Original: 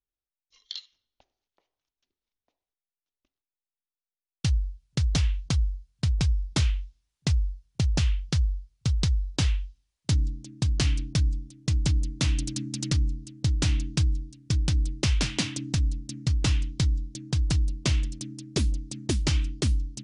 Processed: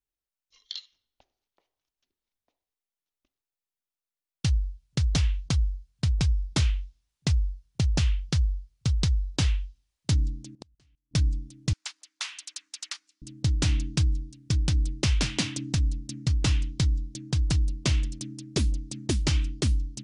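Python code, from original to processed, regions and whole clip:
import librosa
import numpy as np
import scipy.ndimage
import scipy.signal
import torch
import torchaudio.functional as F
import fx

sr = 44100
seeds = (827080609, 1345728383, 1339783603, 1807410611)

y = fx.chain(x, sr, fx.transient(attack_db=-1, sustain_db=-7),
    fx.gate_flip(shuts_db=-26.0, range_db=-37),
    fx.level_steps(step_db=21), at=(10.55, 11.14))
y = fx.chain(y, sr, fx.highpass(hz=960.0, slope=24),
    fx.high_shelf(hz=4900.0, db=-5.5), at=(11.73, 13.22))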